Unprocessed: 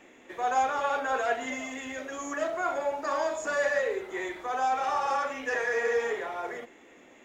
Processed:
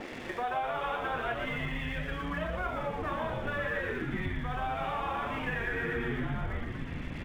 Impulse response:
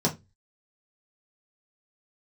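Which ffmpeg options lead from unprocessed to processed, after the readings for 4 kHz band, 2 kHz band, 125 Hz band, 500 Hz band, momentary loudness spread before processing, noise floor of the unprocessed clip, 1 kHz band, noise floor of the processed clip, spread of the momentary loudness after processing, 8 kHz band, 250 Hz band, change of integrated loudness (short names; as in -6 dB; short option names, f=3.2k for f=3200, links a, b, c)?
-0.5 dB, -2.5 dB, n/a, -7.0 dB, 10 LU, -55 dBFS, -6.0 dB, -41 dBFS, 4 LU, under -15 dB, +3.5 dB, -4.5 dB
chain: -filter_complex "[0:a]adynamicequalizer=threshold=0.00562:dfrequency=2900:dqfactor=0.98:tfrequency=2900:tqfactor=0.98:attack=5:release=100:ratio=0.375:range=2.5:mode=boostabove:tftype=bell,asplit=2[a][b];[b]acompressor=mode=upward:threshold=-29dB:ratio=2.5,volume=2dB[c];[a][c]amix=inputs=2:normalize=0,asplit=9[d][e][f][g][h][i][j][k][l];[e]adelay=119,afreqshift=-110,volume=-5.5dB[m];[f]adelay=238,afreqshift=-220,volume=-10.4dB[n];[g]adelay=357,afreqshift=-330,volume=-15.3dB[o];[h]adelay=476,afreqshift=-440,volume=-20.1dB[p];[i]adelay=595,afreqshift=-550,volume=-25dB[q];[j]adelay=714,afreqshift=-660,volume=-29.9dB[r];[k]adelay=833,afreqshift=-770,volume=-34.8dB[s];[l]adelay=952,afreqshift=-880,volume=-39.7dB[t];[d][m][n][o][p][q][r][s][t]amix=inputs=9:normalize=0,aresample=8000,aresample=44100,asubboost=boost=8.5:cutoff=160,aeval=exprs='sgn(val(0))*max(abs(val(0))-0.00596,0)':c=same,acompressor=threshold=-35dB:ratio=3"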